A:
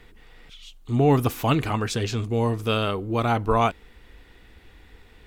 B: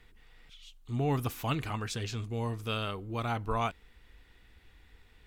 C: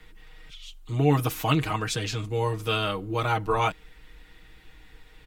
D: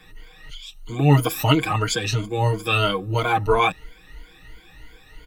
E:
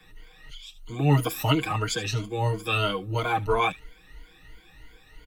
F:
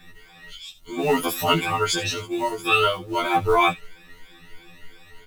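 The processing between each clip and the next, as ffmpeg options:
-af "equalizer=f=400:t=o:w=2.4:g=-5.5,volume=-7.5dB"
-filter_complex "[0:a]aecho=1:1:6.4:0.84,acrossover=split=130|1200|5500[a][b][c][d];[a]asoftclip=type=tanh:threshold=-39.5dB[e];[e][b][c][d]amix=inputs=4:normalize=0,volume=6dB"
-af "afftfilt=real='re*pow(10,17/40*sin(2*PI*(1.8*log(max(b,1)*sr/1024/100)/log(2)-(3)*(pts-256)/sr)))':imag='im*pow(10,17/40*sin(2*PI*(1.8*log(max(b,1)*sr/1024/100)/log(2)-(3)*(pts-256)/sr)))':win_size=1024:overlap=0.75,volume=2.5dB"
-filter_complex "[0:a]acrossover=split=350|460|1900[a][b][c][d];[b]volume=25dB,asoftclip=hard,volume=-25dB[e];[d]aecho=1:1:75:0.178[f];[a][e][c][f]amix=inputs=4:normalize=0,volume=-5dB"
-filter_complex "[0:a]asplit=2[a][b];[b]acrusher=bits=5:mode=log:mix=0:aa=0.000001,volume=-4.5dB[c];[a][c]amix=inputs=2:normalize=0,afftfilt=real='re*2*eq(mod(b,4),0)':imag='im*2*eq(mod(b,4),0)':win_size=2048:overlap=0.75,volume=4dB"

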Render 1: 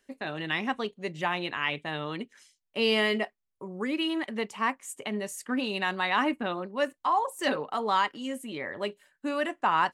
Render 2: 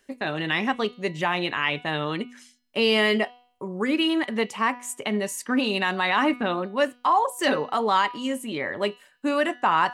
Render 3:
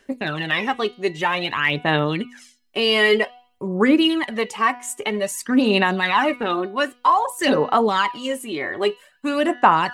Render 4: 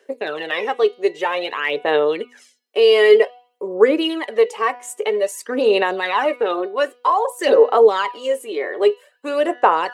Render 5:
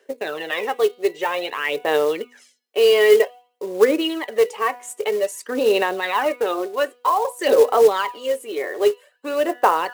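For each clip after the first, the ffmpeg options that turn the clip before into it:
-filter_complex "[0:a]bandreject=f=244.9:t=h:w=4,bandreject=f=489.8:t=h:w=4,bandreject=f=734.7:t=h:w=4,bandreject=f=979.6:t=h:w=4,bandreject=f=1.2245k:t=h:w=4,bandreject=f=1.4694k:t=h:w=4,bandreject=f=1.7143k:t=h:w=4,bandreject=f=1.9592k:t=h:w=4,bandreject=f=2.2041k:t=h:w=4,bandreject=f=2.449k:t=h:w=4,bandreject=f=2.6939k:t=h:w=4,bandreject=f=2.9388k:t=h:w=4,bandreject=f=3.1837k:t=h:w=4,bandreject=f=3.4286k:t=h:w=4,bandreject=f=3.6735k:t=h:w=4,bandreject=f=3.9184k:t=h:w=4,bandreject=f=4.1633k:t=h:w=4,bandreject=f=4.4082k:t=h:w=4,bandreject=f=4.6531k:t=h:w=4,bandreject=f=4.898k:t=h:w=4,bandreject=f=5.1429k:t=h:w=4,bandreject=f=5.3878k:t=h:w=4,bandreject=f=5.6327k:t=h:w=4,bandreject=f=5.8776k:t=h:w=4,bandreject=f=6.1225k:t=h:w=4,asplit=2[a][b];[b]alimiter=limit=-20dB:level=0:latency=1,volume=3dB[c];[a][c]amix=inputs=2:normalize=0,volume=-1dB"
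-af "aphaser=in_gain=1:out_gain=1:delay=2.8:decay=0.56:speed=0.52:type=sinusoidal,volume=2dB"
-af "highpass=f=460:t=q:w=4.9,volume=-3dB"
-af "acrusher=bits=5:mode=log:mix=0:aa=0.000001,volume=-2dB"

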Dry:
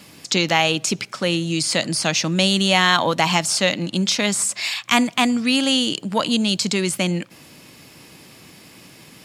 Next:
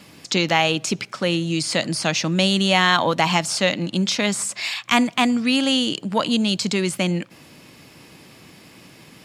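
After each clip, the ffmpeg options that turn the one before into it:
-af "highshelf=f=5k:g=-6"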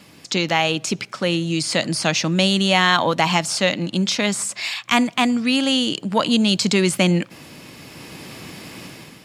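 -af "dynaudnorm=f=520:g=3:m=11dB,volume=-1dB"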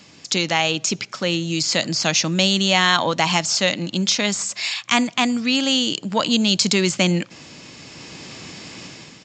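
-af "aresample=16000,aresample=44100,aemphasis=mode=production:type=50fm,volume=-1.5dB"

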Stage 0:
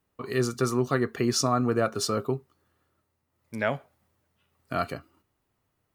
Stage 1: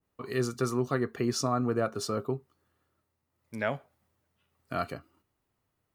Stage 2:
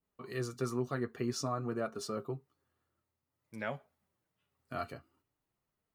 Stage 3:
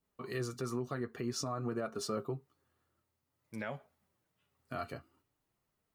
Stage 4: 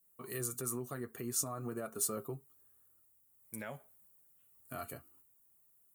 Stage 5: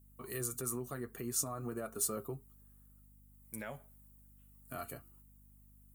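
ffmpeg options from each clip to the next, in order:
-af "adynamicequalizer=threshold=0.0112:dfrequency=1500:dqfactor=0.7:tfrequency=1500:tqfactor=0.7:attack=5:release=100:ratio=0.375:range=2:mode=cutabove:tftype=highshelf,volume=-3.5dB"
-af "flanger=delay=4.3:depth=4.7:regen=-38:speed=0.51:shape=triangular,volume=-3dB"
-af "alimiter=level_in=6dB:limit=-24dB:level=0:latency=1:release=162,volume=-6dB,volume=3dB"
-af "aexciter=amount=9.8:drive=7:freq=7.4k,volume=-4dB"
-af "aeval=exprs='val(0)+0.000891*(sin(2*PI*50*n/s)+sin(2*PI*2*50*n/s)/2+sin(2*PI*3*50*n/s)/3+sin(2*PI*4*50*n/s)/4+sin(2*PI*5*50*n/s)/5)':c=same"

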